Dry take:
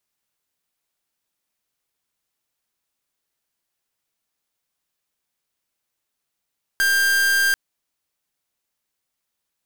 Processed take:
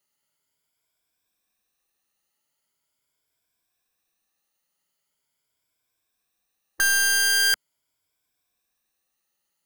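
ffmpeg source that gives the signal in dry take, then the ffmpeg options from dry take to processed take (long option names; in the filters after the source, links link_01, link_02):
-f lavfi -i "aevalsrc='0.126*(2*lt(mod(1590*t,1),0.44)-1)':duration=0.74:sample_rate=44100"
-af "afftfilt=real='re*pow(10,11/40*sin(2*PI*(1.7*log(max(b,1)*sr/1024/100)/log(2)-(0.42)*(pts-256)/sr)))':imag='im*pow(10,11/40*sin(2*PI*(1.7*log(max(b,1)*sr/1024/100)/log(2)-(0.42)*(pts-256)/sr)))':win_size=1024:overlap=0.75"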